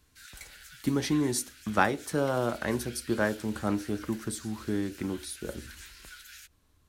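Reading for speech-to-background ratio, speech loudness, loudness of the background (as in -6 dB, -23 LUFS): 17.0 dB, -31.0 LUFS, -48.0 LUFS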